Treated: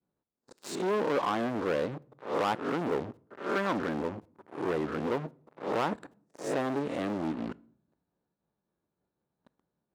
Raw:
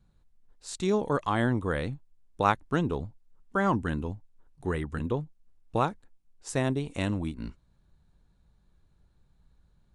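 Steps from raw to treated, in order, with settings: reverse spectral sustain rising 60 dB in 0.33 s; tilt shelf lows +8 dB, about 1.3 kHz; expander -51 dBFS; waveshaping leveller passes 5; reverse; compression 10:1, threshold -25 dBFS, peak gain reduction 16.5 dB; reverse; high-pass 320 Hz 12 dB/octave; treble shelf 7.2 kHz -8.5 dB; on a send: reverberation RT60 0.60 s, pre-delay 3 ms, DRR 21 dB

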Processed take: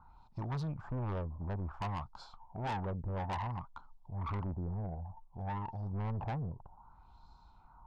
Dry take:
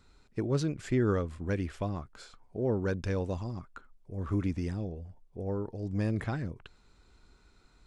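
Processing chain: FFT filter 160 Hz 0 dB, 460 Hz -16 dB, 900 Hz +14 dB, 1.9 kHz -22 dB, 5.4 kHz -7 dB; LFO low-pass sine 0.58 Hz 470–4400 Hz; saturation -35 dBFS, distortion -7 dB; trim +1.5 dB

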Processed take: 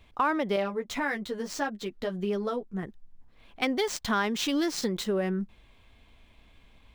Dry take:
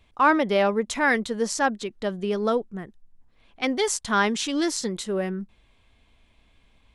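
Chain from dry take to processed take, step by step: median filter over 5 samples; compression 4:1, threshold -28 dBFS, peak gain reduction 12 dB; 0.56–2.83 s: flange 1.7 Hz, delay 9.9 ms, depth 2.2 ms, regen -7%; trim +3 dB

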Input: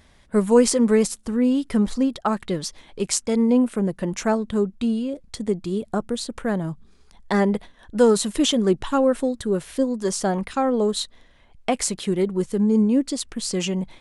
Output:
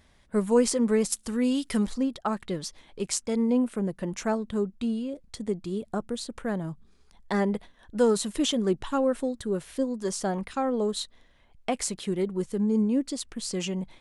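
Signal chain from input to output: 1.12–1.87 s: treble shelf 2 kHz +12 dB; trim -6 dB

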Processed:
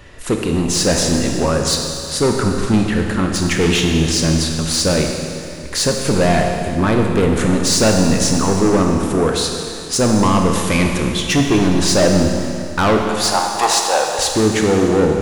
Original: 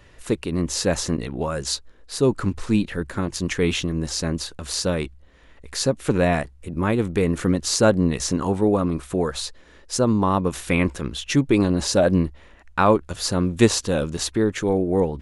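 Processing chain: saturation -20 dBFS, distortion -8 dB; 13.06–14.19 s: resonant high-pass 800 Hz, resonance Q 5.4; Schroeder reverb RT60 2.5 s, combs from 25 ms, DRR 2 dB; trim +9 dB

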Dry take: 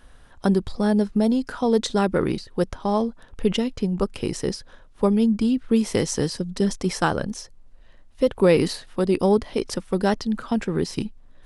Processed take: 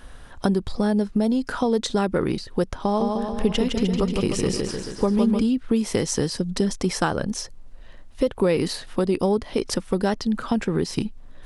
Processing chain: compression 2.5:1, threshold -29 dBFS, peak gain reduction 11.5 dB; 2.81–5.41 s: bouncing-ball echo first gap 160 ms, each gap 0.9×, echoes 5; trim +7 dB

